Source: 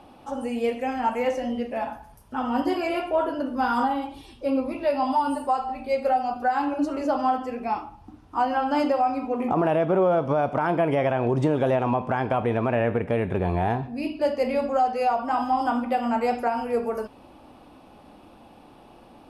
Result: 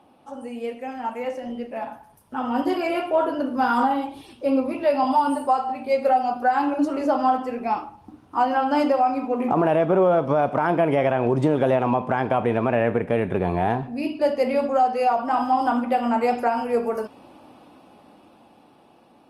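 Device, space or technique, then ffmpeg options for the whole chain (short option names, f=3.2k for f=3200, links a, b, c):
video call: -filter_complex "[0:a]asettb=1/sr,asplit=3[a][b][c];[a]atrim=end=5.044[d];[b]atrim=start=5.04:end=6.35,asetpts=PTS-STARTPTS,afade=t=in:d=0.004:c=qsin,afade=t=out:st=1.306:d=0.004:c=qsin,highpass=f=73:w=0.5412,highpass=f=73:w=1.3066[e];[c]atrim=start=6.346[f];[d][e]acrossfade=d=0.004:c1=hsin:c2=qsin[g];[g][f]acrossfade=d=0.004:c1=qsin:c2=hsin,highpass=120,dynaudnorm=f=410:g=11:m=9dB,volume=-5dB" -ar 48000 -c:a libopus -b:a 32k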